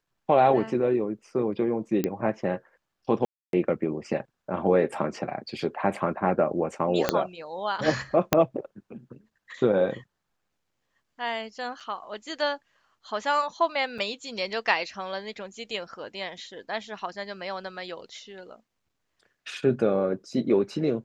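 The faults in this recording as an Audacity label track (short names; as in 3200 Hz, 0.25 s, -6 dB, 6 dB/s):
2.040000	2.040000	pop -13 dBFS
3.250000	3.530000	gap 0.282 s
7.090000	7.090000	pop -6 dBFS
8.330000	8.330000	pop -3 dBFS
11.800000	11.810000	gap 6.2 ms
13.980000	13.990000	gap 5.7 ms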